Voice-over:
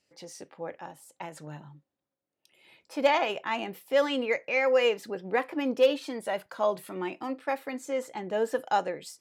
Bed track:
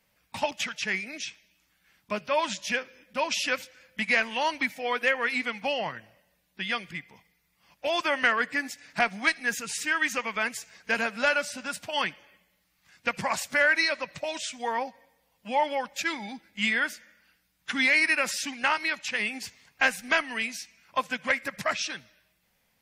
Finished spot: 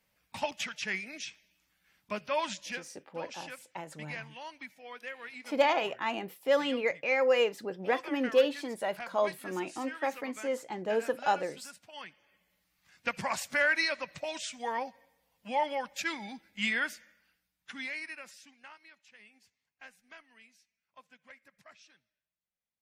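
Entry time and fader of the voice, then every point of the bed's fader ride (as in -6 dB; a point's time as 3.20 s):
2.55 s, -2.0 dB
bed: 2.49 s -5 dB
3.10 s -17.5 dB
12.06 s -17.5 dB
12.52 s -4.5 dB
17.01 s -4.5 dB
18.80 s -28 dB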